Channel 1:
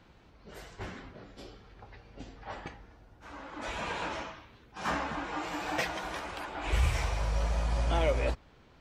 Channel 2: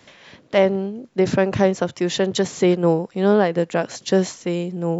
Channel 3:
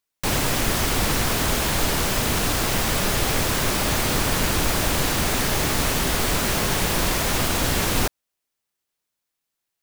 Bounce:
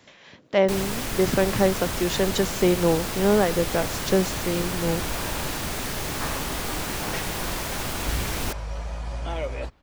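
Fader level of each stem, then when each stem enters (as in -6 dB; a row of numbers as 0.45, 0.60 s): -2.0, -3.5, -7.5 dB; 1.35, 0.00, 0.45 s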